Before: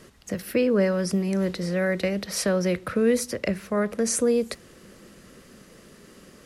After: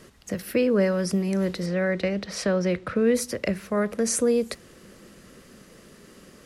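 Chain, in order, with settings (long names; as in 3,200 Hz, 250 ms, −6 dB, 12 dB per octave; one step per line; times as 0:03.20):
0:01.66–0:03.15: high-frequency loss of the air 72 metres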